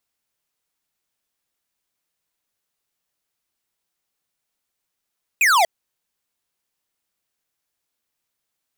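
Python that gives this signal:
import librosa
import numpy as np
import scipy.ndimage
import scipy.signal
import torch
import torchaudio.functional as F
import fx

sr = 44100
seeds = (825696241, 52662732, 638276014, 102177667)

y = fx.laser_zap(sr, level_db=-15.0, start_hz=2600.0, end_hz=630.0, length_s=0.24, wave='square')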